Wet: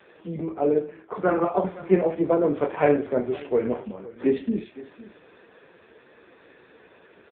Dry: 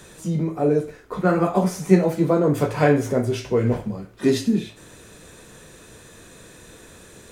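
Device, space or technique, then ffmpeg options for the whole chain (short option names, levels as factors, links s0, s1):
satellite phone: -af "highpass=300,lowpass=3000,aecho=1:1:511:0.119" -ar 8000 -c:a libopencore_amrnb -b:a 5900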